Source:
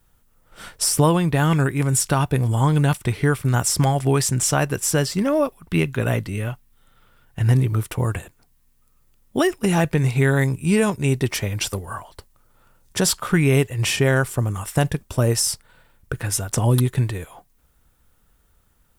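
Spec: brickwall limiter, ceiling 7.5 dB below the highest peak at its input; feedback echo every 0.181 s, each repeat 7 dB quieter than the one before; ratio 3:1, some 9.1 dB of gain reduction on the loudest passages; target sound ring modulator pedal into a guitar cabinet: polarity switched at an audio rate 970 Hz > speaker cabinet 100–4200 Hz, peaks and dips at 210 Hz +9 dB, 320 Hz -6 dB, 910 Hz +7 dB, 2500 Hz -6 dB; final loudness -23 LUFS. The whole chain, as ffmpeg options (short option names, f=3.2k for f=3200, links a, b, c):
-af "acompressor=threshold=-25dB:ratio=3,alimiter=limit=-19.5dB:level=0:latency=1,aecho=1:1:181|362|543|724|905:0.447|0.201|0.0905|0.0407|0.0183,aeval=exprs='val(0)*sgn(sin(2*PI*970*n/s))':c=same,highpass=100,equalizer=f=210:t=q:w=4:g=9,equalizer=f=320:t=q:w=4:g=-6,equalizer=f=910:t=q:w=4:g=7,equalizer=f=2.5k:t=q:w=4:g=-6,lowpass=f=4.2k:w=0.5412,lowpass=f=4.2k:w=1.3066,volume=4dB"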